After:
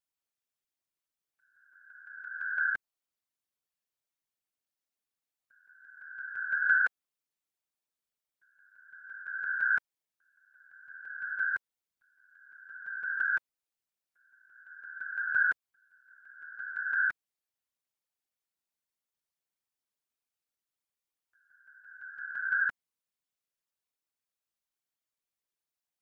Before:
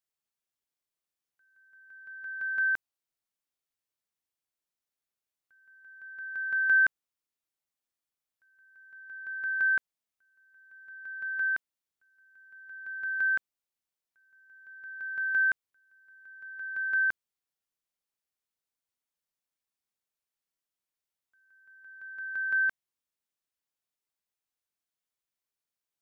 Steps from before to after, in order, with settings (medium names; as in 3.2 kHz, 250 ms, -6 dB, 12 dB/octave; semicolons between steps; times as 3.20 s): whisper effect; trim -2 dB